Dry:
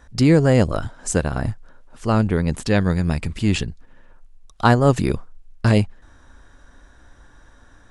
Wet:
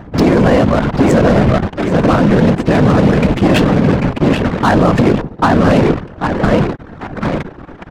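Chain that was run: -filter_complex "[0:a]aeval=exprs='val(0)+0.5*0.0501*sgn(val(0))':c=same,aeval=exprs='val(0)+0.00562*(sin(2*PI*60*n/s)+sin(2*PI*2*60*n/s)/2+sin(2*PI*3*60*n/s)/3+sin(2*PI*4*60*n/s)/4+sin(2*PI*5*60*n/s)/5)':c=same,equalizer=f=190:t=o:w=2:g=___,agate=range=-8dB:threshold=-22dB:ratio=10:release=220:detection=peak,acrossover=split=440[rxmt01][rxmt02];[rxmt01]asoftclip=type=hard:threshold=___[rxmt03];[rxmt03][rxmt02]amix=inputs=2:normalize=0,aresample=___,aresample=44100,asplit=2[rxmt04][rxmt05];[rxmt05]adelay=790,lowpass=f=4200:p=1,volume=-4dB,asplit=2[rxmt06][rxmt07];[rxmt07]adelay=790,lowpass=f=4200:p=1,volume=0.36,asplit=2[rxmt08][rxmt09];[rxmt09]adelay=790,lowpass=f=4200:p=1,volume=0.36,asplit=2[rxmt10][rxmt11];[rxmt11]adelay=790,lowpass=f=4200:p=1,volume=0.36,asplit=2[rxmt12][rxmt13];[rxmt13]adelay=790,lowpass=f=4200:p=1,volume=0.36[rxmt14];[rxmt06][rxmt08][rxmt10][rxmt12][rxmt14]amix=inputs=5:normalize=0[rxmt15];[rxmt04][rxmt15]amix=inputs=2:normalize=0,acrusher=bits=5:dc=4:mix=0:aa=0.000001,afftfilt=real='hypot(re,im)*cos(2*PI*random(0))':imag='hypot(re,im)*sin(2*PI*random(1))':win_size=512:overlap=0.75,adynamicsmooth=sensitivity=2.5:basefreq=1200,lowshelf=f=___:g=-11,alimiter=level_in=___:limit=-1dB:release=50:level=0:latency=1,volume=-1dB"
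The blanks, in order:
10.5, -12.5dB, 32000, 120, 18.5dB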